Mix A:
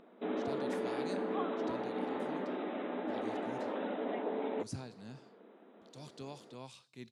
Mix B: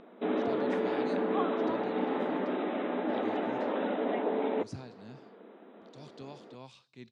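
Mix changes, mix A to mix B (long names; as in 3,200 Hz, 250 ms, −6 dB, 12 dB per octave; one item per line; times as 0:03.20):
background +6.0 dB
master: add low-pass filter 5,300 Hz 12 dB per octave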